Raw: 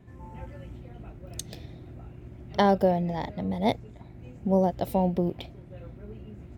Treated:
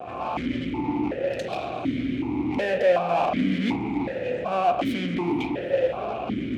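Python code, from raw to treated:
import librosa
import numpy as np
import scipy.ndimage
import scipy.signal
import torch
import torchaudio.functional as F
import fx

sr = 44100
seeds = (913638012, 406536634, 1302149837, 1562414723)

p1 = fx.over_compress(x, sr, threshold_db=-30.0, ratio=-1.0)
p2 = x + (p1 * librosa.db_to_amplitude(0.0))
p3 = fx.fuzz(p2, sr, gain_db=40.0, gate_db=-47.0)
p4 = fx.echo_diffused(p3, sr, ms=451, feedback_pct=48, wet_db=-15.5)
p5 = fx.rev_spring(p4, sr, rt60_s=3.1, pass_ms=(52,), chirp_ms=35, drr_db=6.5)
p6 = fx.vowel_held(p5, sr, hz=2.7)
y = p6 * librosa.db_to_amplitude(2.0)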